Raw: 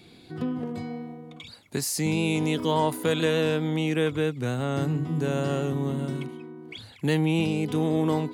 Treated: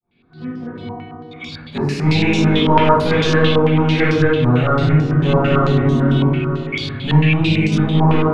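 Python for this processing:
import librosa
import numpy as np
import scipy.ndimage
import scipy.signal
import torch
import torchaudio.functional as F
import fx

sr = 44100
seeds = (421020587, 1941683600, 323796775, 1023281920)

y = fx.fade_in_head(x, sr, length_s=2.51)
y = fx.peak_eq(y, sr, hz=540.0, db=-10.0, octaves=2.6, at=(6.2, 7.95))
y = 10.0 ** (-22.0 / 20.0) * np.tanh(y / 10.0 ** (-22.0 / 20.0))
y = fx.low_shelf(y, sr, hz=270.0, db=5.0)
y = y + 10.0 ** (-18.0 / 20.0) * np.pad(y, (int(992 * sr / 1000.0), 0))[:len(y)]
y = fx.room_shoebox(y, sr, seeds[0], volume_m3=400.0, walls='mixed', distance_m=6.0)
y = fx.rider(y, sr, range_db=4, speed_s=0.5)
y = fx.filter_held_lowpass(y, sr, hz=9.0, low_hz=990.0, high_hz=5500.0)
y = F.gain(torch.from_numpy(y), -2.5).numpy()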